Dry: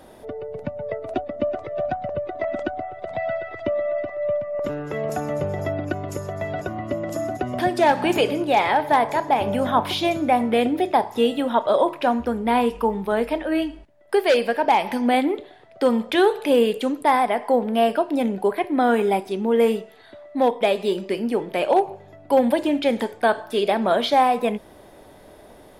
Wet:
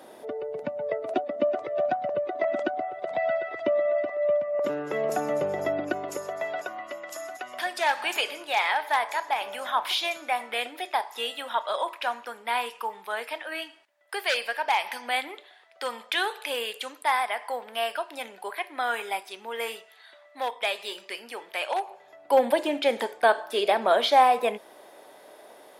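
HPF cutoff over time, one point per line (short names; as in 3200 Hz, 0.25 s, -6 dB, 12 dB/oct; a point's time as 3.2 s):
5.8 s 290 Hz
7.07 s 1200 Hz
21.78 s 1200 Hz
22.39 s 490 Hz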